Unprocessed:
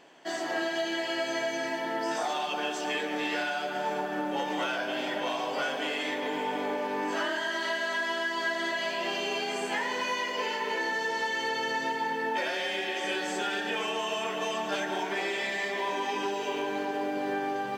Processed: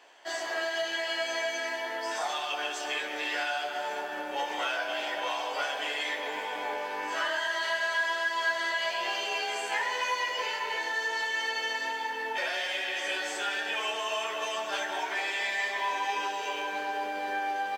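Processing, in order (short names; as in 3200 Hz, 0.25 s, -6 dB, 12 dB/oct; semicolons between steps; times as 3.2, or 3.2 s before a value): octaver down 2 oct, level -4 dB; HPF 620 Hz 12 dB/oct; doubler 14 ms -4.5 dB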